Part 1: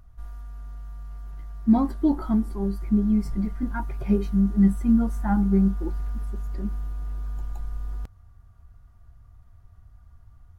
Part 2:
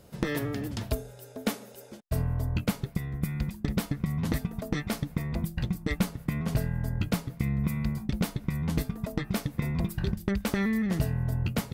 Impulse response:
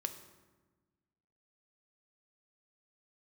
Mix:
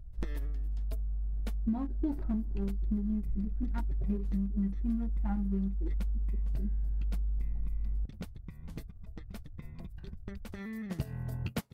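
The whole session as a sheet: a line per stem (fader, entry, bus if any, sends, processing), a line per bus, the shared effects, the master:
-4.0 dB, 0.00 s, no send, Wiener smoothing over 41 samples; low shelf 150 Hz +9 dB
+2.5 dB, 0.00 s, no send, upward expander 2.5:1, over -44 dBFS; auto duck -12 dB, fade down 0.65 s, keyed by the first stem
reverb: off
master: compressor 6:1, threshold -29 dBFS, peak gain reduction 14.5 dB

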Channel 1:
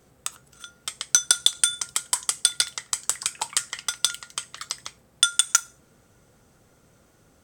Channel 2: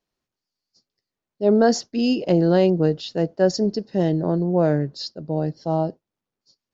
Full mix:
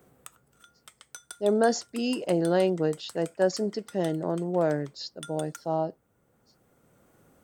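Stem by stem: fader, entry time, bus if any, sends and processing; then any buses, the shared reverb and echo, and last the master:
-8.5 dB, 0.00 s, no send, three-band squash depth 40%; auto duck -6 dB, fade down 0.95 s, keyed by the second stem
-1.5 dB, 0.00 s, no send, tilt +3.5 dB/oct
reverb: off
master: bell 5200 Hz -13.5 dB 2 oct

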